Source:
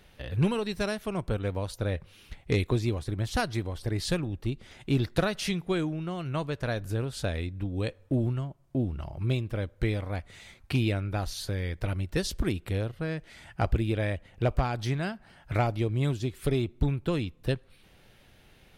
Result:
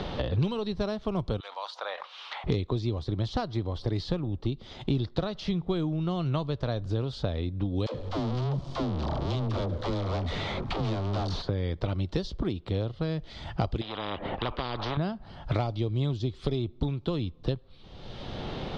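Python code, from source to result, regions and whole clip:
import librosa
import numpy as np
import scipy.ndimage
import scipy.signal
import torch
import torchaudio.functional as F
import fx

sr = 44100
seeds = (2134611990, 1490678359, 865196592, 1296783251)

y = fx.chain(x, sr, fx.highpass(hz=860.0, slope=24),
    fx.sustainer(db_per_s=130.0), at=(1.4, 2.44))
y = fx.chain(y, sr, fx.clip_hard(threshold_db=-33.0),
    fx.leveller(passes=5),
    fx.dispersion(late='lows', ms=84.0, hz=370.0), at=(7.86, 11.42))
y = fx.chain(y, sr, fx.air_absorb(metres=300.0),
    fx.spectral_comp(ratio=10.0), at=(13.81, 14.97))
y = scipy.signal.sosfilt(scipy.signal.butter(4, 4700.0, 'lowpass', fs=sr, output='sos'), y)
y = fx.band_shelf(y, sr, hz=2000.0, db=-10.0, octaves=1.1)
y = fx.band_squash(y, sr, depth_pct=100)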